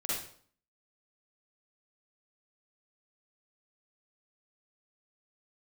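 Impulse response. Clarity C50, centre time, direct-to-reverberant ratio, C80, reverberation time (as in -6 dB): -3.5 dB, 67 ms, -8.0 dB, 4.0 dB, 0.55 s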